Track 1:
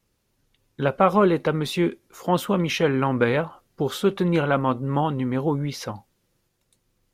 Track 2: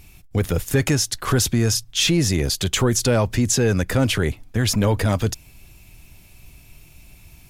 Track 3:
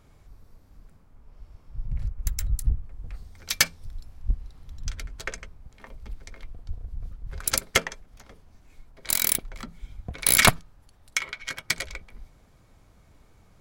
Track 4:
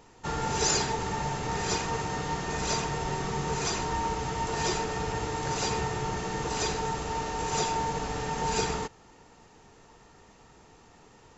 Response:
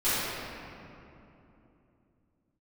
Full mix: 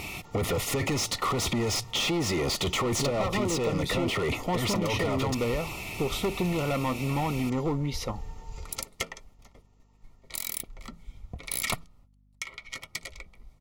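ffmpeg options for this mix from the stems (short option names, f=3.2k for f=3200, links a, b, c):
-filter_complex "[0:a]asoftclip=type=hard:threshold=-20dB,adelay=2200,volume=-6dB[a];[1:a]asplit=2[b][c];[c]highpass=f=720:p=1,volume=31dB,asoftclip=type=tanh:threshold=-7.5dB[d];[b][d]amix=inputs=2:normalize=0,lowpass=f=1.6k:p=1,volume=-6dB,alimiter=limit=-17.5dB:level=0:latency=1:release=13,volume=-2dB,asplit=2[e][f];[2:a]agate=range=-26dB:threshold=-48dB:ratio=16:detection=peak,aeval=exprs='val(0)+0.00141*(sin(2*PI*50*n/s)+sin(2*PI*2*50*n/s)/2+sin(2*PI*3*50*n/s)/3+sin(2*PI*4*50*n/s)/4+sin(2*PI*5*50*n/s)/5)':c=same,adelay=1250,volume=-9dB[g];[3:a]acompressor=threshold=-31dB:ratio=6,volume=-17dB[h];[f]apad=whole_len=655310[i];[g][i]sidechaincompress=threshold=-37dB:ratio=8:attack=16:release=156[j];[a][j]amix=inputs=2:normalize=0,dynaudnorm=f=200:g=17:m=5dB,alimiter=limit=-17.5dB:level=0:latency=1:release=264,volume=0dB[k];[e][h][k]amix=inputs=3:normalize=0,asuperstop=centerf=1600:order=12:qfactor=4.4,acompressor=threshold=-24dB:ratio=6"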